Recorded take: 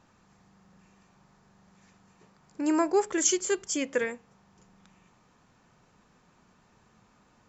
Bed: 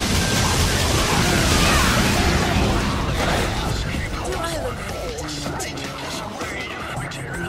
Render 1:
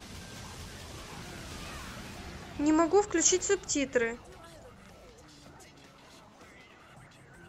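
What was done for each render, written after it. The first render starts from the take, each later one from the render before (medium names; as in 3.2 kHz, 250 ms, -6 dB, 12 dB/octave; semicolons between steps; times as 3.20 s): add bed -26 dB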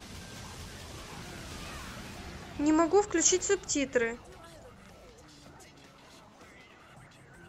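no audible change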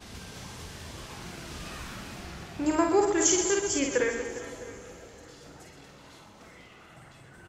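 on a send: reverse bouncing-ball echo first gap 50 ms, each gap 1.5×, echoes 5; on the sum: plate-style reverb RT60 4.8 s, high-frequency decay 0.9×, DRR 12.5 dB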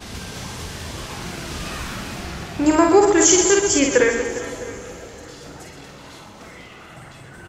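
trim +10.5 dB; peak limiter -3 dBFS, peak gain reduction 3 dB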